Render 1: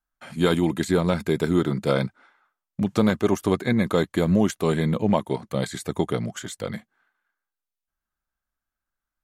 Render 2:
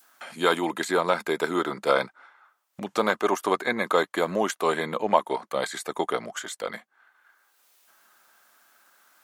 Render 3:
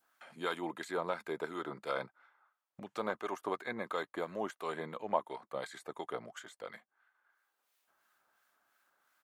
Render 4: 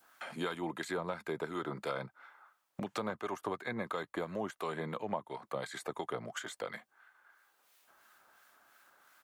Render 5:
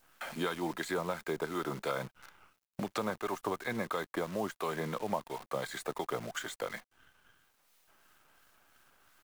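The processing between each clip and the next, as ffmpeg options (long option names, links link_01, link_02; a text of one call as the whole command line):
ffmpeg -i in.wav -af "highpass=440,adynamicequalizer=threshold=0.01:dfrequency=1100:dqfactor=0.9:tfrequency=1100:tqfactor=0.9:attack=5:release=100:ratio=0.375:range=3.5:mode=boostabove:tftype=bell,acompressor=mode=upward:threshold=-36dB:ratio=2.5" out.wav
ffmpeg -i in.wav -filter_complex "[0:a]lowshelf=frequency=120:gain=-8.5,acrossover=split=1300[link_01][link_02];[link_01]aeval=exprs='val(0)*(1-0.5/2+0.5/2*cos(2*PI*2.9*n/s))':channel_layout=same[link_03];[link_02]aeval=exprs='val(0)*(1-0.5/2-0.5/2*cos(2*PI*2.9*n/s))':channel_layout=same[link_04];[link_03][link_04]amix=inputs=2:normalize=0,firequalizer=gain_entry='entry(120,0);entry(190,-8);entry(5700,-15)':delay=0.05:min_phase=1,volume=-1.5dB" out.wav
ffmpeg -i in.wav -filter_complex "[0:a]acrossover=split=160[link_01][link_02];[link_02]acompressor=threshold=-47dB:ratio=4[link_03];[link_01][link_03]amix=inputs=2:normalize=0,volume=10.5dB" out.wav
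ffmpeg -i in.wav -af "acrusher=bits=9:dc=4:mix=0:aa=0.000001,volume=2.5dB" out.wav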